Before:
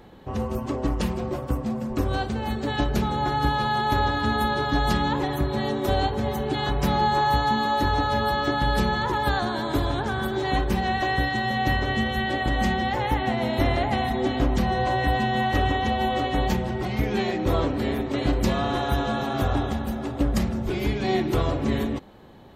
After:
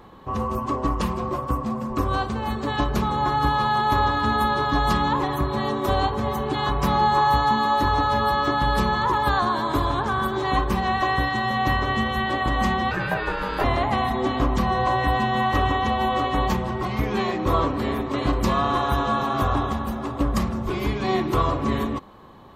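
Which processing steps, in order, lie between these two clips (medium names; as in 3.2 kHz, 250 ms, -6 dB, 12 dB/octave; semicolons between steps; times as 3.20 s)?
peaking EQ 1.1 kHz +14.5 dB 0.32 oct; 12.91–13.64 s: ring modulator 700 Hz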